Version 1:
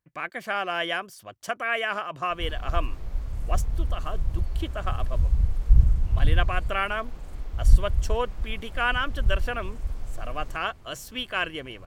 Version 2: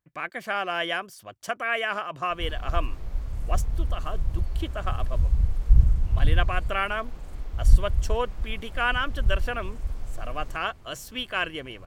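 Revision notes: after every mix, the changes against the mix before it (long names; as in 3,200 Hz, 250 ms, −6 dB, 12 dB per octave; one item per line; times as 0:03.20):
nothing changed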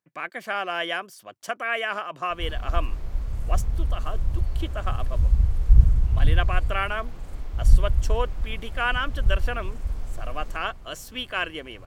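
speech: add high-pass filter 180 Hz
reverb: on, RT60 2.3 s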